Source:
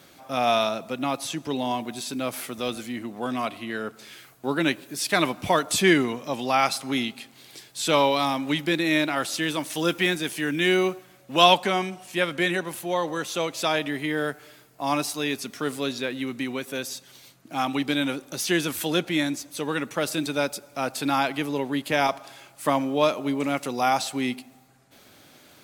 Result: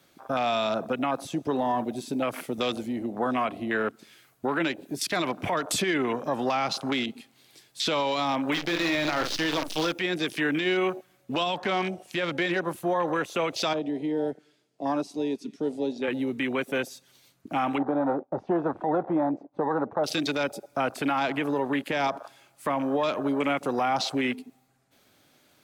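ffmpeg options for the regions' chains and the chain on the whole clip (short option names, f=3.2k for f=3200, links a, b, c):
-filter_complex "[0:a]asettb=1/sr,asplit=3[a][b][c];[a]atrim=end=8.524[d];[b]atrim=start=8.52:end=9.92,asetpts=PTS-STARTPTS,afade=t=in:d=0.004:c=qsin,afade=t=out:st=1.396:d=0.004:c=qsin,asplit=2[e][f];[f]adelay=47,volume=-8dB[g];[e][g]amix=inputs=2:normalize=0,atrim=end_sample=61740,acompressor=mode=upward:threshold=-26dB:ratio=2.5:attack=3.2:release=140:knee=2.83:detection=peak,acrusher=bits=5:dc=4:mix=0:aa=0.000001[h];[c]atrim=start=9.916[i];[d][h]acrossfade=d=0.004:c1=hsin:c2=qsin[j];[j][i]acrossfade=d=0.004:c1=qsin:c2=hsin,asettb=1/sr,asplit=3[k][l][m];[k]atrim=end=13.734[n];[l]atrim=start=13.73:end=16.08,asetpts=PTS-STARTPTS,afade=t=in:d=0.004:c=qsin,afade=t=out:st=2.346:d=0.004:c=qsin,highpass=220,lowpass=5.5k,equalizer=f=1.3k:t=o:w=2.3:g=-12,aecho=1:1:221:0.0708,atrim=end_sample=103635[o];[m]atrim=start=16.076[p];[n][o]acrossfade=d=0.004:c1=hsin:c2=qsin[q];[q][p]acrossfade=d=0.004:c1=qsin:c2=hsin,asettb=1/sr,asplit=3[r][s][t];[r]atrim=end=17.784[u];[s]atrim=start=17.78:end=20.04,asetpts=PTS-STARTPTS,afade=t=in:d=0.004:c=qsin,afade=t=out:st=2.256:d=0.004:c=qsin,agate=range=-33dB:threshold=-40dB:ratio=3:release=100:detection=peak,lowpass=f=810:t=q:w=3.3[v];[t]atrim=start=20.036[w];[u][v]acrossfade=d=0.004:c1=hsin:c2=qsin[x];[x][w]acrossfade=d=0.004:c1=qsin:c2=hsin,afwtdn=0.0178,acrossover=split=370|830[y][z][aa];[y]acompressor=threshold=-39dB:ratio=4[ab];[z]acompressor=threshold=-33dB:ratio=4[ac];[aa]acompressor=threshold=-31dB:ratio=4[ad];[ab][ac][ad]amix=inputs=3:normalize=0,alimiter=level_in=0.5dB:limit=-24dB:level=0:latency=1:release=38,volume=-0.5dB,volume=7dB"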